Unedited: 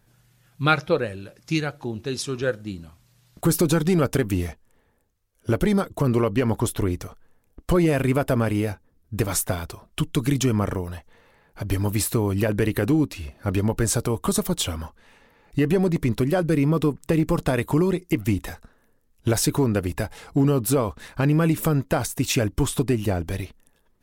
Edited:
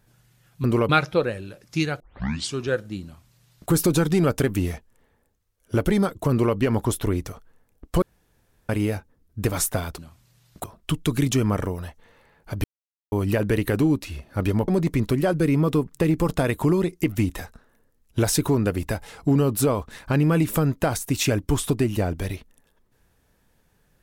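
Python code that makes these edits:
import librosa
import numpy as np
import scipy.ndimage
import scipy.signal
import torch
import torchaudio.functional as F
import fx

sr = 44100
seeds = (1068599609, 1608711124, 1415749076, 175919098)

y = fx.edit(x, sr, fx.tape_start(start_s=1.75, length_s=0.54),
    fx.duplicate(start_s=2.79, length_s=0.66, to_s=9.73),
    fx.duplicate(start_s=6.06, length_s=0.25, to_s=0.64),
    fx.room_tone_fill(start_s=7.77, length_s=0.67),
    fx.silence(start_s=11.73, length_s=0.48),
    fx.cut(start_s=13.77, length_s=2.0), tone=tone)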